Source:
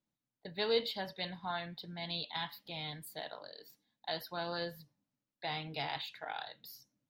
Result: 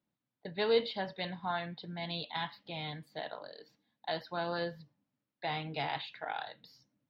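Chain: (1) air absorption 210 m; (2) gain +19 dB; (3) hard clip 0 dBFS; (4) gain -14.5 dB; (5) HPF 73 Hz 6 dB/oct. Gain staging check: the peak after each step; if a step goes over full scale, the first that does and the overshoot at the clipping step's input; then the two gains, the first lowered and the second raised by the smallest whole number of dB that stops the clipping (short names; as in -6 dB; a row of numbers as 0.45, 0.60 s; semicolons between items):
-21.5, -2.5, -2.5, -17.0, -17.0 dBFS; no overload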